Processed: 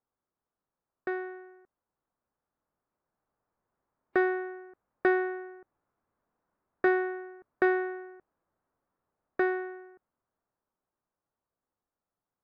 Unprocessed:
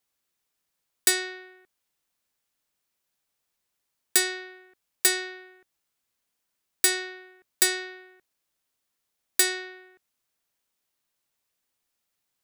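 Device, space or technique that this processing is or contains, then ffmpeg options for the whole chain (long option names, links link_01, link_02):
action camera in a waterproof case: -af "lowpass=frequency=1300:width=0.5412,lowpass=frequency=1300:width=1.3066,dynaudnorm=framelen=200:gausssize=31:maxgain=9dB" -ar 48000 -c:a aac -b:a 48k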